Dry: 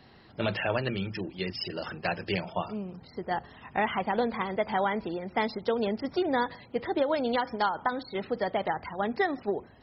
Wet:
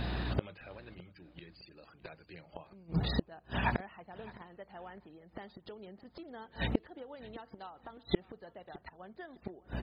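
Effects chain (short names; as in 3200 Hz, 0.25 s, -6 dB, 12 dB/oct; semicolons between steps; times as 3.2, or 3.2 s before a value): pitch shift -1.5 st; hum 60 Hz, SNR 22 dB; flipped gate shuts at -30 dBFS, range -37 dB; on a send: feedback echo 0.61 s, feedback 30%, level -21 dB; on the sum: gain +16 dB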